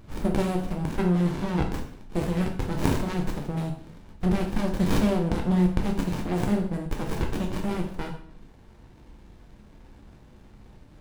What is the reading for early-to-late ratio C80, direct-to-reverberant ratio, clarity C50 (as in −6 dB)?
11.5 dB, 1.0 dB, 7.0 dB